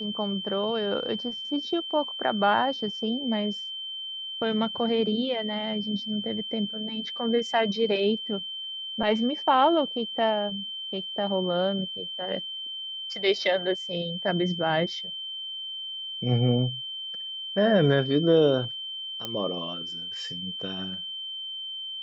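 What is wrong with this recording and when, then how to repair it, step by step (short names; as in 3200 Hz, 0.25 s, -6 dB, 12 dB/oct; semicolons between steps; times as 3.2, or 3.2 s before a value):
tone 3100 Hz -33 dBFS
19.25 pop -16 dBFS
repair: de-click; notch 3100 Hz, Q 30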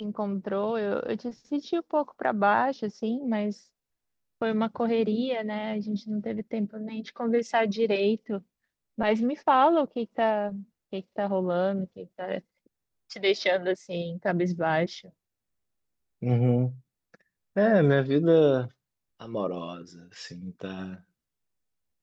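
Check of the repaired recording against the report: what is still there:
none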